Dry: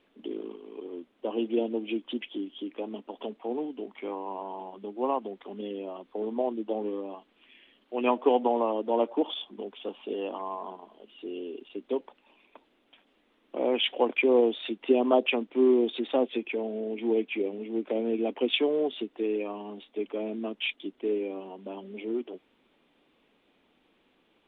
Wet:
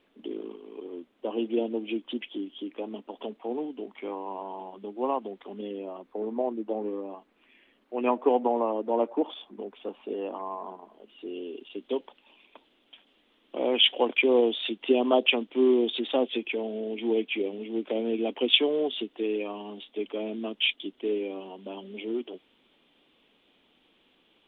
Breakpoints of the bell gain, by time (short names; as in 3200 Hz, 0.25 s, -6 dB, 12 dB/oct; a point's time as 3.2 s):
bell 3200 Hz 0.56 oct
5.49 s +0.5 dB
6.14 s -8 dB
10.82 s -8 dB
11.3 s +0.5 dB
11.83 s +8.5 dB